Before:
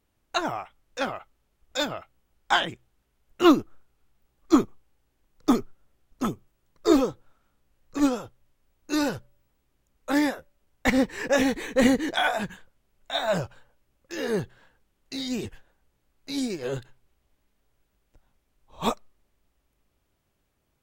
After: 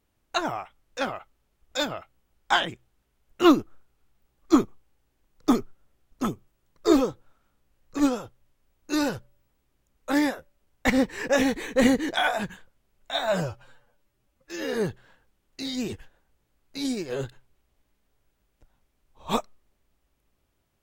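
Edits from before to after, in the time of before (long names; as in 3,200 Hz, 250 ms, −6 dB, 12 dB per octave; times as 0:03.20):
0:13.32–0:14.26: time-stretch 1.5×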